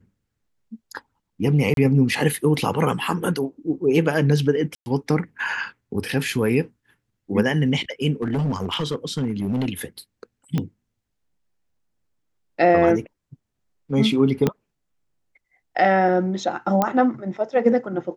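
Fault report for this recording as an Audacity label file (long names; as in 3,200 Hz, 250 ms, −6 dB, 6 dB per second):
1.740000	1.770000	drop-out 32 ms
4.750000	4.860000	drop-out 110 ms
8.220000	9.660000	clipping −19 dBFS
10.580000	10.580000	click −12 dBFS
14.470000	14.470000	click −7 dBFS
16.820000	16.820000	click −7 dBFS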